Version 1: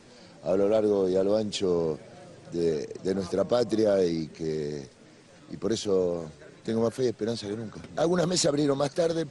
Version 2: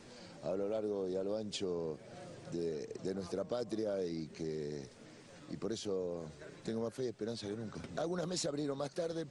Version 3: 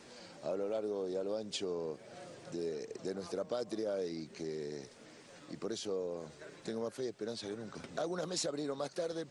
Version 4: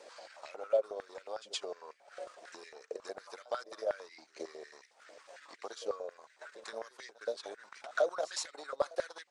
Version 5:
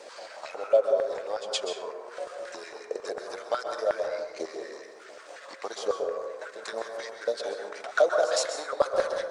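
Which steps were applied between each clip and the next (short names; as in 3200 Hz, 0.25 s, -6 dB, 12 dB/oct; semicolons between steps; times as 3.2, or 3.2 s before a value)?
compressor 2.5:1, threshold -37 dBFS, peak gain reduction 12 dB; gain -2.5 dB
low shelf 180 Hz -11.5 dB; gain +2 dB
transient shaper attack +5 dB, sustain -11 dB; pre-echo 0.119 s -17 dB; stepped high-pass 11 Hz 550–2000 Hz; gain -2.5 dB
plate-style reverb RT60 1.2 s, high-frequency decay 0.35×, pre-delay 0.115 s, DRR 4 dB; gain +8 dB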